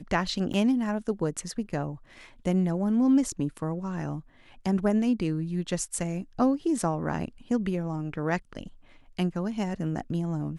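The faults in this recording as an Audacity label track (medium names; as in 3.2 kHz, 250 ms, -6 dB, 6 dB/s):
0.530000	0.540000	dropout 8.5 ms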